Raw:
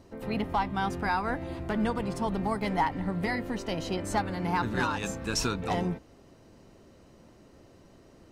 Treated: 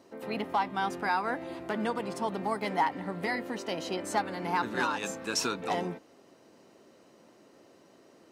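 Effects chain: HPF 270 Hz 12 dB/oct

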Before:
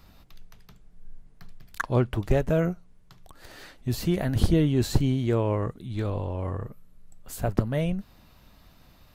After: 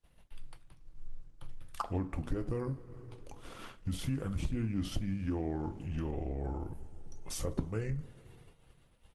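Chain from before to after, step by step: two-slope reverb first 0.29 s, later 3.3 s, from -22 dB, DRR 7.5 dB; compressor 3:1, threshold -34 dBFS, peak gain reduction 15.5 dB; expander -42 dBFS; pitch shift -5 st; Opus 20 kbps 48000 Hz

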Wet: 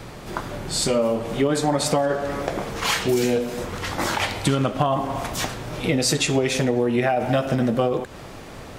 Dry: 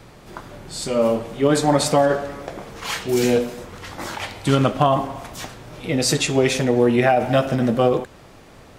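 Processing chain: compressor 6:1, threshold -25 dBFS, peak gain reduction 13 dB; gain +7 dB

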